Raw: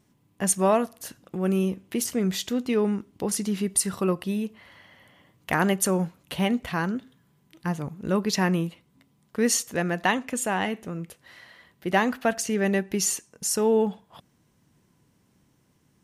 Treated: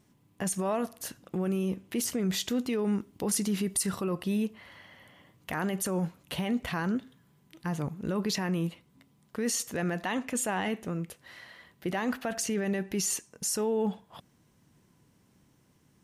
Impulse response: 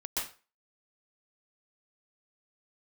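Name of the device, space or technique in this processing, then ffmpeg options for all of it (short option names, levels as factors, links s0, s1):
stacked limiters: -filter_complex "[0:a]alimiter=limit=0.168:level=0:latency=1:release=62,alimiter=limit=0.0841:level=0:latency=1:release=12,asettb=1/sr,asplit=3[s0][s1][s2];[s0]atrim=end=2.504[s3];[s1]atrim=start=2.5:end=3.83,asetpts=PTS-STARTPTS,afade=t=in:d=0.004:c=qsin,afade=t=out:st=1.326:d=0.004:c=qsin,highshelf=f=8700:g=5.5[s4];[s2]atrim=start=3.826[s5];[s3][s4]acrossfade=d=0.004:c1=hsin:c2=qsin[s6];[s6][s5]acrossfade=d=0.004:c1=qsin:c2=hsin"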